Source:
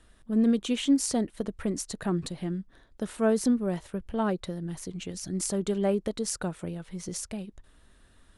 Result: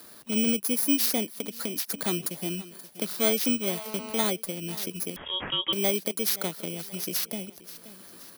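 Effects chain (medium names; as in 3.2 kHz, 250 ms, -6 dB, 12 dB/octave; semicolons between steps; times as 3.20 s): bit-reversed sample order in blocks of 16 samples; high-pass 220 Hz 12 dB/octave; feedback delay 527 ms, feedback 38%, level -21 dB; 1.31–1.92 s: compression 4:1, threshold -33 dBFS, peak gain reduction 6.5 dB; treble shelf 2.3 kHz +8.5 dB; 3.69–4.27 s: mobile phone buzz -43 dBFS; 5.16–5.73 s: frequency inversion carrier 3.5 kHz; three bands compressed up and down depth 40%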